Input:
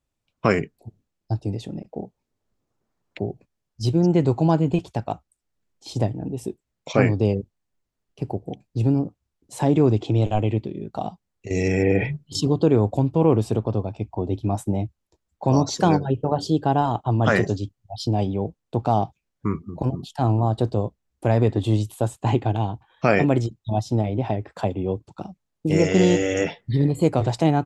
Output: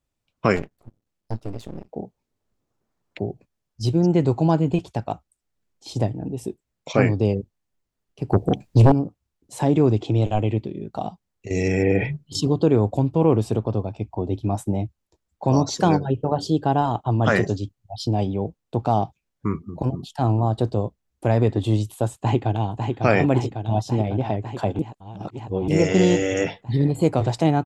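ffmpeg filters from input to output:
ffmpeg -i in.wav -filter_complex "[0:a]asettb=1/sr,asplit=3[link_01][link_02][link_03];[link_01]atrim=end=0.564[link_04];[link_02]atrim=start=0.56:end=1.89,asetpts=PTS-STARTPTS,afade=type=in:duration=0.004:curve=qsin,afade=type=out:start_time=1.326:duration=0.004:curve=qsin,aeval=exprs='max(val(0),0)':channel_layout=same[link_05];[link_03]atrim=start=1.886[link_06];[link_04][link_05]acrossfade=duration=0.004:curve1=hsin:curve2=qsin[link_07];[link_07][link_06]acrossfade=duration=0.004:curve1=qsin:curve2=hsin,asettb=1/sr,asplit=3[link_08][link_09][link_10];[link_08]atrim=end=8.324[link_11];[link_09]atrim=start=8.32:end=8.92,asetpts=PTS-STARTPTS,afade=type=in:duration=0.004:curve=qsin,afade=type=out:start_time=0.596:duration=0.004:curve=qsin,aeval=exprs='0.376*sin(PI/2*2.82*val(0)/0.376)':channel_layout=same[link_12];[link_10]atrim=start=8.916[link_13];[link_11][link_12]acrossfade=duration=0.004:curve1=hsin:curve2=qsin[link_14];[link_14][link_13]acrossfade=duration=0.004:curve1=qsin:curve2=hsin,asplit=2[link_15][link_16];[link_16]afade=type=in:start_time=22.16:duration=0.01,afade=type=out:start_time=22.71:duration=0.01,aecho=0:1:550|1100|1650|2200|2750|3300|3850|4400|4950|5500|6050|6600:0.562341|0.421756|0.316317|0.237238|0.177928|0.133446|0.100085|0.0750635|0.0562976|0.0422232|0.0316674|0.0237506[link_17];[link_15][link_17]amix=inputs=2:normalize=0,asplit=3[link_18][link_19][link_20];[link_18]atrim=end=24.792[link_21];[link_19]atrim=start=24.788:end=25.682,asetpts=PTS-STARTPTS,areverse[link_22];[link_20]atrim=start=25.678[link_23];[link_21][link_22]acrossfade=duration=0.004:curve1=hsin:curve2=hsin[link_24];[link_24][link_23]acrossfade=duration=0.004:curve1=hsin:curve2=hsin" out.wav

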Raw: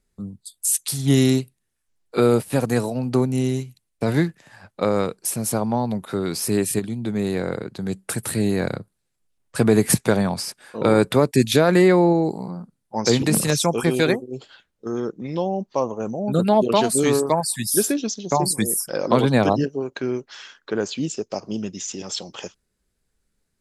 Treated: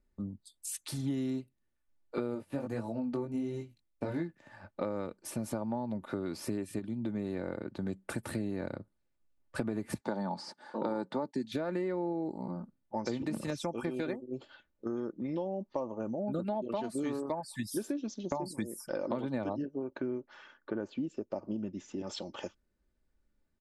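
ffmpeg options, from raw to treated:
ffmpeg -i in.wav -filter_complex "[0:a]asplit=3[link_01][link_02][link_03];[link_01]afade=type=out:start_time=2.34:duration=0.02[link_04];[link_02]flanger=delay=17.5:depth=3.9:speed=1.4,afade=type=in:start_time=2.34:duration=0.02,afade=type=out:start_time=4.27:duration=0.02[link_05];[link_03]afade=type=in:start_time=4.27:duration=0.02[link_06];[link_04][link_05][link_06]amix=inputs=3:normalize=0,asettb=1/sr,asplit=3[link_07][link_08][link_09];[link_07]atrim=end=10.014[link_10];[link_08]atrim=start=10.01:end=11.52,asetpts=PTS-STARTPTS,afade=type=in:duration=0.004:curve=qsin,afade=type=out:start_time=1.506:duration=0.004:curve=qsin,highpass=frequency=150:width=0.5412,highpass=frequency=150:width=1.3066,equalizer=frequency=180:width_type=q:width=4:gain=4,equalizer=frequency=860:width_type=q:width=4:gain=10,equalizer=frequency=2500:width_type=q:width=4:gain=-9,equalizer=frequency=4400:width_type=q:width=4:gain=7,lowpass=frequency=8500:width=0.5412,lowpass=frequency=8500:width=1.3066[link_11];[link_09]atrim=start=11.516[link_12];[link_10][link_11]acrossfade=duration=0.004:curve1=hsin:curve2=qsin[link_13];[link_13][link_12]acrossfade=duration=0.004:curve1=qsin:curve2=hsin,asettb=1/sr,asplit=3[link_14][link_15][link_16];[link_14]atrim=end=19.624[link_17];[link_15]atrim=start=19.62:end=22.07,asetpts=PTS-STARTPTS,afade=type=in:duration=0.004:curve=qsin,afade=type=out:start_time=2.446:duration=0.004:curve=qsin,equalizer=frequency=6300:width=0.39:gain=-10.5[link_18];[link_16]atrim=start=22.066[link_19];[link_17][link_18]acrossfade=duration=0.004:curve1=hsin:curve2=qsin[link_20];[link_20][link_19]acrossfade=duration=0.004:curve1=qsin:curve2=hsin,lowpass=frequency=1400:poles=1,aecho=1:1:3.4:0.45,acompressor=threshold=-28dB:ratio=6,volume=-4dB" out.wav

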